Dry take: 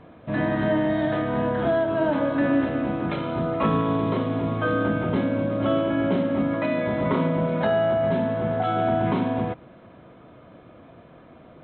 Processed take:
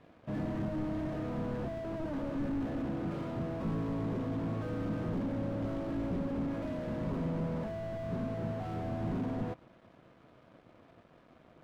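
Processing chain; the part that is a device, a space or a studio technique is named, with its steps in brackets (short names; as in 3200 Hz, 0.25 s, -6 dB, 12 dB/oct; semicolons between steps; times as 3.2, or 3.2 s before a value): early transistor amplifier (crossover distortion -52.5 dBFS; slew limiter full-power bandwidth 16 Hz); gain -7 dB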